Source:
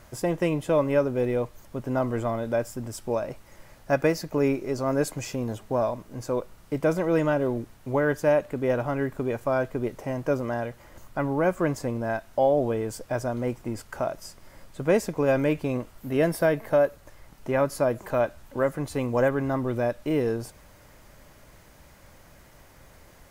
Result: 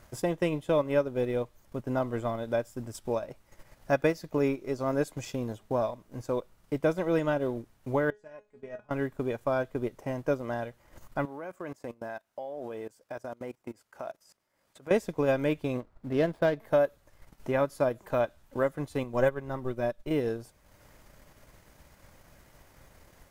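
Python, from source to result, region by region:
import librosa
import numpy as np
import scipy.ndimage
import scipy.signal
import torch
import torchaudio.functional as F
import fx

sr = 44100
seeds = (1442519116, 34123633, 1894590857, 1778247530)

y = fx.chain(x, sr, fx.lowpass(hz=8600.0, slope=24),
    fx.level_steps(step_db=13),
    fx.comb_fb(f0_hz=210.0, decay_s=0.25, harmonics='all', damping=0.0, mix_pct=90), at=(8.1, 8.91))
y = fx.chain(y, sr, fx.highpass(hz=340.0, slope=6),
    fx.level_steps(step_db=17), at=(11.25, 14.91))
y = fx.chain(y, sr, fx.median_filter(points=15),
    fx.high_shelf(hz=5400.0, db=-5.5), at=(15.8, 16.6))
y = fx.chain(y, sr, fx.low_shelf(hz=65.0, db=10.5),
    fx.comb(ms=5.3, depth=0.43),
    fx.upward_expand(threshold_db=-35.0, expansion=1.5), at=(19.03, 20.11))
y = fx.dynamic_eq(y, sr, hz=3500.0, q=4.7, threshold_db=-59.0, ratio=4.0, max_db=7)
y = fx.transient(y, sr, attack_db=2, sustain_db=-8)
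y = y * 10.0 ** (-4.0 / 20.0)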